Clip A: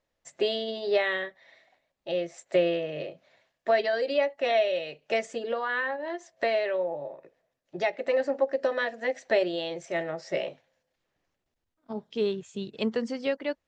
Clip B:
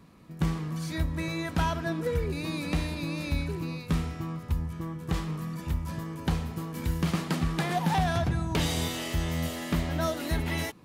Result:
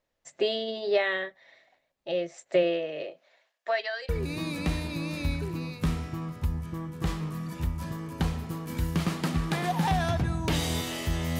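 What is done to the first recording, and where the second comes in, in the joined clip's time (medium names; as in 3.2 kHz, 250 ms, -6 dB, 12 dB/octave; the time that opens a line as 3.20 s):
clip A
2.62–4.09 s: high-pass 160 Hz -> 1.4 kHz
4.09 s: go over to clip B from 2.16 s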